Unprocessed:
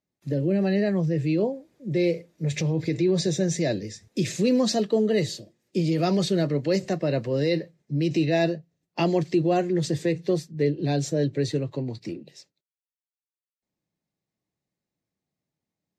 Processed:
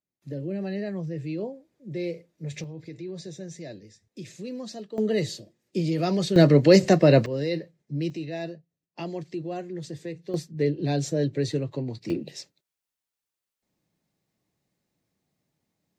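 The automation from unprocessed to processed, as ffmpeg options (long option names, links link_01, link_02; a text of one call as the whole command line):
ffmpeg -i in.wav -af "asetnsamples=nb_out_samples=441:pad=0,asendcmd='2.64 volume volume -14.5dB;4.98 volume volume -2dB;6.36 volume volume 8.5dB;7.26 volume volume -4dB;8.1 volume volume -11dB;10.34 volume volume -1dB;12.1 volume volume 8dB',volume=-8dB" out.wav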